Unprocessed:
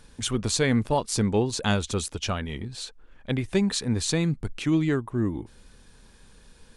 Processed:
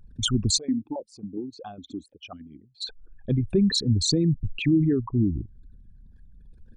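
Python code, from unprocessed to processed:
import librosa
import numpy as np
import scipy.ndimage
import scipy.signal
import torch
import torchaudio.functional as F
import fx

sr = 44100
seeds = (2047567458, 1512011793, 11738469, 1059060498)

y = fx.envelope_sharpen(x, sr, power=3.0)
y = fx.dynamic_eq(y, sr, hz=530.0, q=1.3, threshold_db=-36.0, ratio=4.0, max_db=-6)
y = fx.vowel_held(y, sr, hz=7.3, at=(0.57, 2.8), fade=0.02)
y = F.gain(torch.from_numpy(y), 4.0).numpy()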